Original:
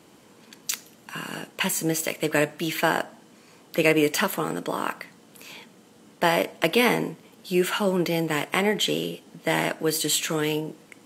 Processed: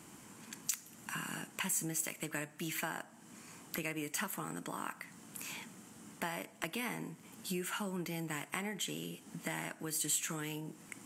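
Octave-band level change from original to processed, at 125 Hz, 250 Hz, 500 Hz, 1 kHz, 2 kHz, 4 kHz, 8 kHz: -12.5 dB, -15.0 dB, -21.5 dB, -15.5 dB, -14.5 dB, -15.5 dB, -7.0 dB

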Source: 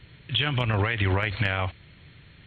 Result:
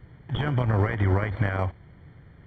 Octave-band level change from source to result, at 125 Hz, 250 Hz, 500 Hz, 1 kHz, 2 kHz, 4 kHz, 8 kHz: +2.5 dB, +2.5 dB, +1.5 dB, -0.5 dB, -5.5 dB, under -10 dB, no reading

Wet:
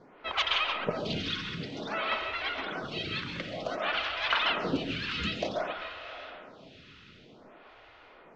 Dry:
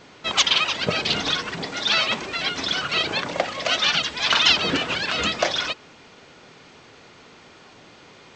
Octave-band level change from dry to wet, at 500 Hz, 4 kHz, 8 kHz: -6.0 dB, -12.5 dB, -23.0 dB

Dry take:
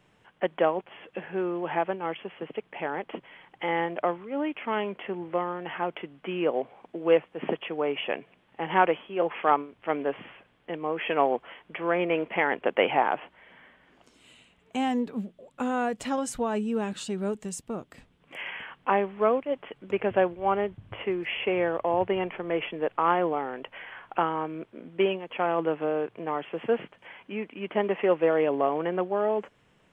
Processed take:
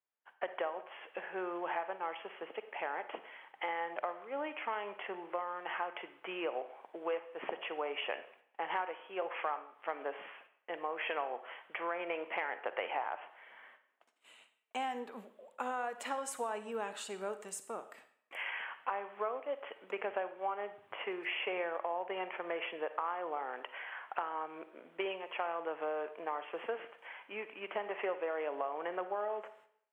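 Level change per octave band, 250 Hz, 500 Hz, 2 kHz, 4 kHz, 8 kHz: -17.5 dB, -12.0 dB, -7.0 dB, -7.0 dB, -5.5 dB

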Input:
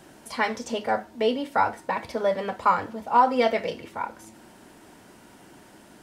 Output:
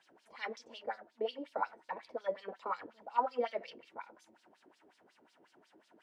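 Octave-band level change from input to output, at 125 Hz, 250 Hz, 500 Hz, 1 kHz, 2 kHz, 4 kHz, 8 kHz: under -20 dB, -19.5 dB, -13.0 dB, -15.0 dB, -15.5 dB, -14.0 dB, no reading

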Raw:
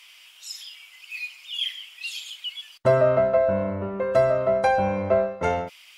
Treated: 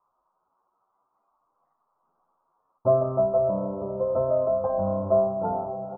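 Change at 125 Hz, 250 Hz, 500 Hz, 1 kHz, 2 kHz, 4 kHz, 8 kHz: -2.5 dB, -1.5 dB, -2.0 dB, -4.0 dB, under -30 dB, under -40 dB, no reading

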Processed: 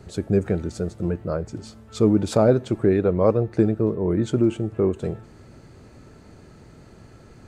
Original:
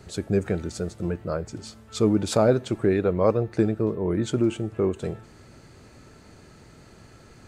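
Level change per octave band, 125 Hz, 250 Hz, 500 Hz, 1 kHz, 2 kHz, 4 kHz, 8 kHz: +3.5 dB, +3.0 dB, +2.5 dB, +0.5 dB, -1.5 dB, -3.0 dB, -3.5 dB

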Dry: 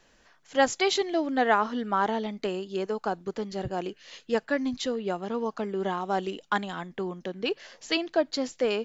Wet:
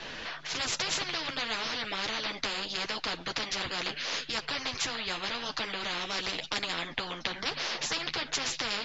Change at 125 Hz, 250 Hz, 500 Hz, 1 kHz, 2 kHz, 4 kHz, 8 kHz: -6.0 dB, -12.5 dB, -13.0 dB, -8.0 dB, +0.5 dB, +5.5 dB, no reading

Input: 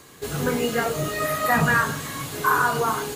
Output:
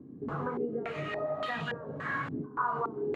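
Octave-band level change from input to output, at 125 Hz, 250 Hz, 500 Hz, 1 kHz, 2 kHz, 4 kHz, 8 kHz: -12.5 dB, -9.5 dB, -8.0 dB, -11.5 dB, -14.0 dB, -14.5 dB, under -35 dB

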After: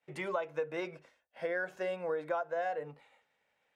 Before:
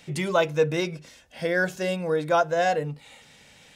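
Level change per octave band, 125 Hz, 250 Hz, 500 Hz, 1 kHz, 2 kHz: -20.5 dB, -15.0 dB, -11.0 dB, -12.0 dB, -11.5 dB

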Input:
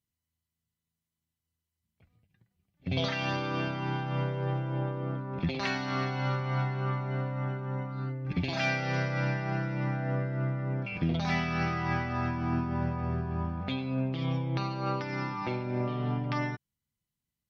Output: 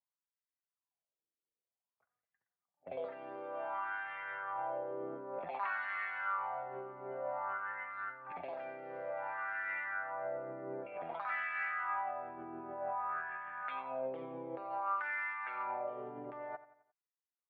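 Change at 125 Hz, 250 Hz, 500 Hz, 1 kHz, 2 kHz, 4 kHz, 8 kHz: -33.5 dB, -20.0 dB, -5.0 dB, -2.5 dB, -3.0 dB, under -20 dB, no reading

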